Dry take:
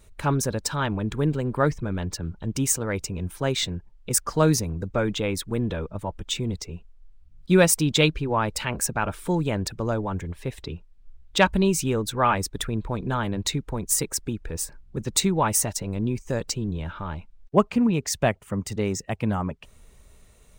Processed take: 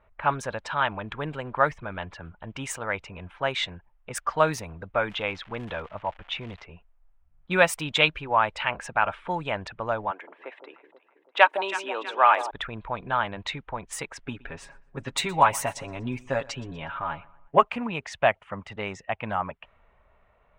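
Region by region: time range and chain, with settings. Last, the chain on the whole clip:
5.09–6.65 LPF 6600 Hz 24 dB/oct + crackle 250/s -35 dBFS
10.11–12.51 Chebyshev high-pass 300 Hz, order 4 + echo with dull and thin repeats by turns 0.162 s, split 880 Hz, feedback 69%, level -9 dB
14.18–17.65 bell 250 Hz +5 dB 0.67 oct + comb 7.3 ms, depth 76% + feedback echo 0.121 s, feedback 47%, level -22 dB
whole clip: low-pass opened by the level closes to 1300 Hz, open at -18 dBFS; band shelf 1400 Hz +15.5 dB 2.9 oct; gain -11.5 dB

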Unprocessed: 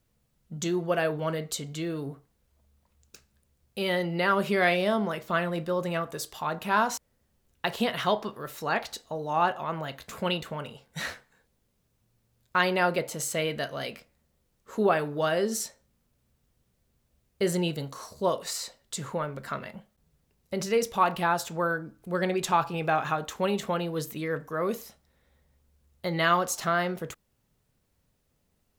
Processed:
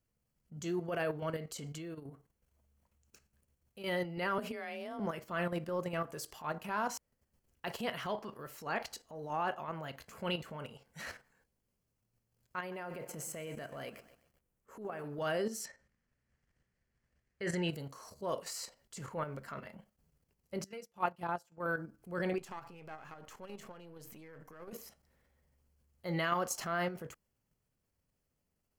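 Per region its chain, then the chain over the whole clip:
1.78–3.84 notch 4900 Hz + compressor 20:1, threshold -36 dBFS
4.38–5 compressor 10:1, threshold -27 dBFS + frequency shift +30 Hz
12.59–15.04 bell 4300 Hz -8 dB 1.2 oct + compressor 2:1, threshold -35 dBFS + lo-fi delay 0.127 s, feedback 55%, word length 9-bit, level -14.5 dB
15.65–17.69 LPF 6800 Hz + bell 1800 Hz +12.5 dB 0.61 oct
20.64–21.66 HPF 44 Hz + comb 5.7 ms, depth 79% + upward expander 2.5:1, over -35 dBFS
22.38–24.73 half-wave gain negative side -7 dB + compressor 3:1, threshold -40 dBFS
whole clip: notch 3700 Hz, Q 5.2; level quantiser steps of 10 dB; transient shaper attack -7 dB, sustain 0 dB; gain -2.5 dB

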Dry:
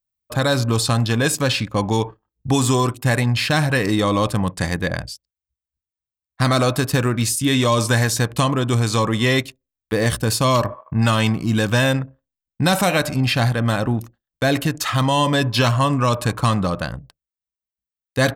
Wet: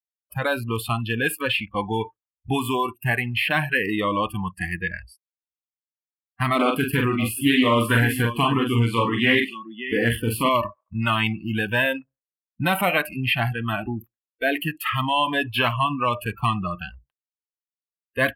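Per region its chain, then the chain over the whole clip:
6.55–10.49 bell 270 Hz +5.5 dB 0.54 oct + tapped delay 43/51/149/576 ms -4.5/-16.5/-18.5/-10.5 dB + Doppler distortion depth 0.22 ms
whole clip: spectral noise reduction 30 dB; EQ curve 250 Hz 0 dB, 2900 Hz +9 dB, 6200 Hz -26 dB, 11000 Hz +6 dB; gain -6.5 dB

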